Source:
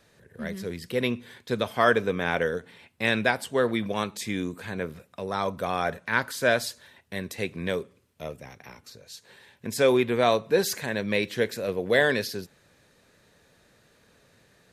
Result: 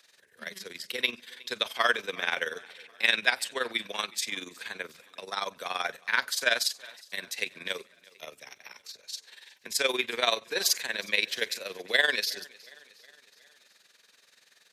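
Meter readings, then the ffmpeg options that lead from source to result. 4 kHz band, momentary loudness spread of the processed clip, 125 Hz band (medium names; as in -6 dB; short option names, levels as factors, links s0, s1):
+5.5 dB, 19 LU, under -20 dB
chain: -filter_complex "[0:a]acrossover=split=170[s0][s1];[s1]crystalizer=i=5.5:c=0[s2];[s0][s2]amix=inputs=2:normalize=0,acrossover=split=230 5700:gain=0.0708 1 0.178[s3][s4][s5];[s3][s4][s5]amix=inputs=3:normalize=0,tremolo=f=21:d=0.75,equalizer=f=280:w=0.33:g=-9,aecho=1:1:364|728|1092|1456:0.0668|0.0374|0.021|0.0117"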